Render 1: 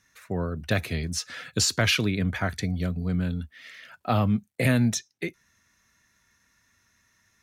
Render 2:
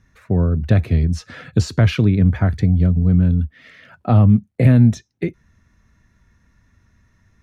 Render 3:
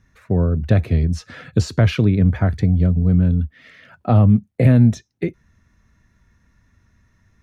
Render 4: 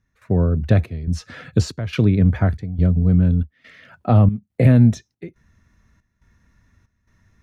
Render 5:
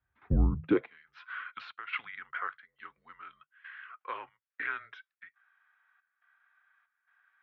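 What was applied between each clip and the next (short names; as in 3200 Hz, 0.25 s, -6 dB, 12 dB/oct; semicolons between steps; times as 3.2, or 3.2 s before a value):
tilt -4 dB/oct; in parallel at -1 dB: compressor, threshold -23 dBFS, peak gain reduction 14 dB; on the sum: gain -1 dB
dynamic EQ 530 Hz, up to +3 dB, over -31 dBFS, Q 1.4; gain -1 dB
step gate "..xxxxxx" 140 bpm -12 dB
mistuned SSB -230 Hz 150–3400 Hz; high-pass sweep 63 Hz -> 1400 Hz, 0.47–0.99; gain -6.5 dB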